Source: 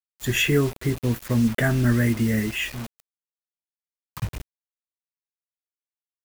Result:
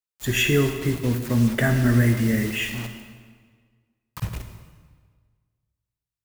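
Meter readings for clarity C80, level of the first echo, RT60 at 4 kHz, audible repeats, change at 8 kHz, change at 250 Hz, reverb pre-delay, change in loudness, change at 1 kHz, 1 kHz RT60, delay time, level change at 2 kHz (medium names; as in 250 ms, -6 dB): 9.0 dB, no echo, 1.3 s, no echo, +1.0 dB, +0.5 dB, 38 ms, +1.0 dB, +1.0 dB, 1.6 s, no echo, +1.0 dB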